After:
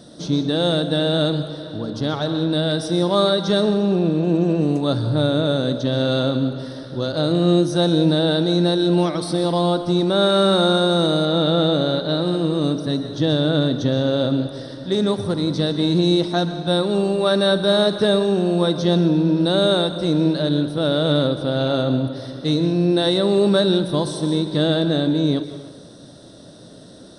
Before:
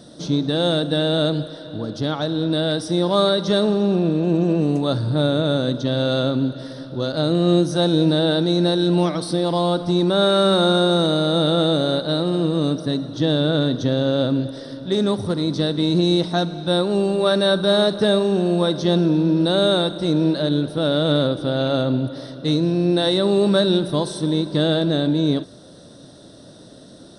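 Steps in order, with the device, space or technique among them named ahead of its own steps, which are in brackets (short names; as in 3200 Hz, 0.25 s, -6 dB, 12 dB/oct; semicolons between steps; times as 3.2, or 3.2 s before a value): compressed reverb return (on a send at -6 dB: reverb RT60 0.85 s, pre-delay 0.118 s + compressor, threshold -22 dBFS, peak gain reduction 11.5 dB); 11.25–12.22 on the sum: LPF 5600 Hz 12 dB/oct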